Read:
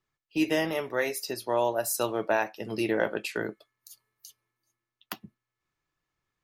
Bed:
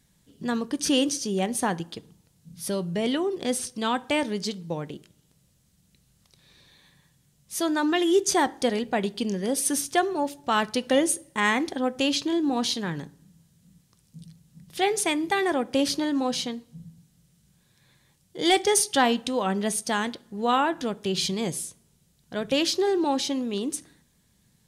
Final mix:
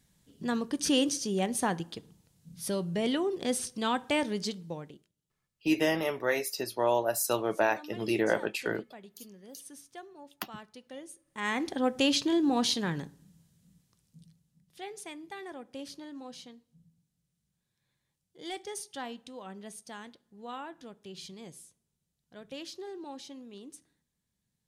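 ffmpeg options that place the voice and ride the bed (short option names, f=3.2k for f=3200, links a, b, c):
-filter_complex "[0:a]adelay=5300,volume=-0.5dB[a];[1:a]volume=18.5dB,afade=t=out:st=4.44:d=0.67:silence=0.1,afade=t=in:st=11.25:d=0.62:silence=0.0794328,afade=t=out:st=12.85:d=1.79:silence=0.141254[b];[a][b]amix=inputs=2:normalize=0"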